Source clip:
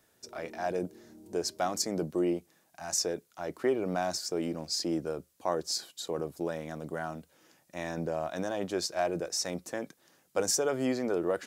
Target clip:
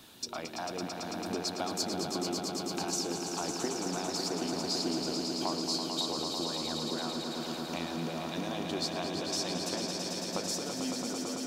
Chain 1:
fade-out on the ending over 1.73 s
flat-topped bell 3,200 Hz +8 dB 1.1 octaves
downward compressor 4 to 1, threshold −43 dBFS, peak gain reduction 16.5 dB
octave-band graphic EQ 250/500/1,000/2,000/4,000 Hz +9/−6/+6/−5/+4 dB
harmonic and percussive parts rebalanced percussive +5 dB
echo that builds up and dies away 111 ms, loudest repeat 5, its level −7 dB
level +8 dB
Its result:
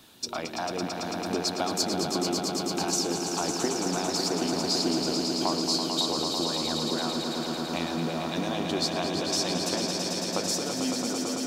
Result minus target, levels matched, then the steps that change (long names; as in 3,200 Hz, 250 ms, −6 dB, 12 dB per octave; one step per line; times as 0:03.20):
downward compressor: peak gain reduction −6 dB
change: downward compressor 4 to 1, threshold −51 dBFS, peak gain reduction 22.5 dB